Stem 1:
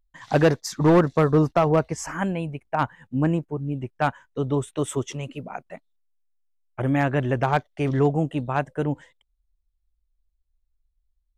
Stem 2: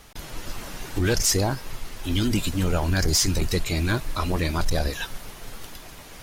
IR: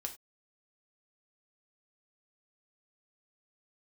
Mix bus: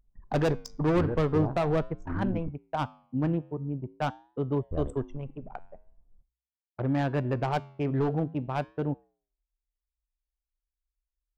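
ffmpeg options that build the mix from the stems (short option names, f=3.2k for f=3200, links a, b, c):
-filter_complex "[0:a]highpass=44,adynamicsmooth=sensitivity=4.5:basefreq=2.7k,volume=16.5dB,asoftclip=hard,volume=-16.5dB,volume=-1.5dB,asplit=2[a][b];[b]volume=-12dB[c];[1:a]lowpass=f=1.3k:w=0.5412,lowpass=f=1.3k:w=1.3066,volume=-7dB,asplit=3[d][e][f];[d]atrim=end=2.49,asetpts=PTS-STARTPTS,afade=t=out:st=2.486:d=0.004:c=hsin[g];[e]atrim=start=2.49:end=4.71,asetpts=PTS-STARTPTS,volume=0[h];[f]atrim=start=4.71,asetpts=PTS-STARTPTS,afade=t=in:d=0.004:c=hsin[i];[g][h][i]concat=n=3:v=0:a=1,asplit=2[j][k];[k]volume=-6.5dB[l];[2:a]atrim=start_sample=2205[m];[c][l]amix=inputs=2:normalize=0[n];[n][m]afir=irnorm=-1:irlink=0[o];[a][j][o]amix=inputs=3:normalize=0,equalizer=f=1.8k:t=o:w=1.3:g=-3,anlmdn=25.1,flanger=delay=7.2:depth=4.1:regen=-89:speed=0.45:shape=triangular"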